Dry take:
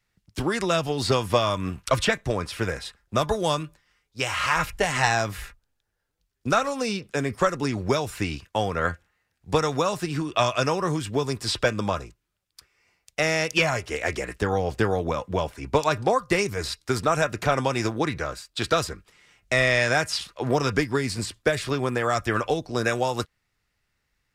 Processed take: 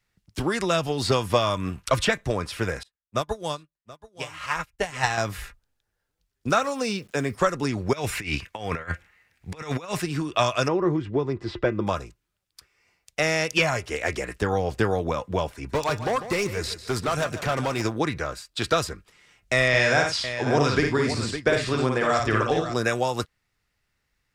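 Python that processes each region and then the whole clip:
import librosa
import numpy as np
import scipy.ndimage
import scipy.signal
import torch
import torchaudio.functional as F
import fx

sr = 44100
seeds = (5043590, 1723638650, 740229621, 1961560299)

y = fx.chain(x, sr, fx.echo_single(ms=728, db=-7.5),
    fx.upward_expand(threshold_db=-43.0, expansion=2.5), at=(2.83, 5.18))
y = fx.chain(y, sr, fx.highpass(hz=70.0, slope=12),
    fx.quant_dither(seeds[0], bits=10, dither='none'), at=(6.49, 7.35))
y = fx.chain(y, sr, fx.peak_eq(hz=2200.0, db=9.5, octaves=0.77),
    fx.over_compress(threshold_db=-29.0, ratio=-0.5), at=(7.93, 10.02))
y = fx.chain(y, sr, fx.spacing_loss(db_at_10k=34),
    fx.small_body(hz=(350.0, 2000.0), ring_ms=85, db=13), at=(10.68, 11.87))
y = fx.chain(y, sr, fx.clip_hard(threshold_db=-20.0),
    fx.echo_feedback(ms=148, feedback_pct=29, wet_db=-12.5), at=(15.54, 17.82))
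y = fx.chain(y, sr, fx.lowpass(hz=7100.0, slope=12),
    fx.echo_multitap(ms=(55, 90, 559), db=(-3.5, -10.0, -9.5)), at=(19.68, 22.74))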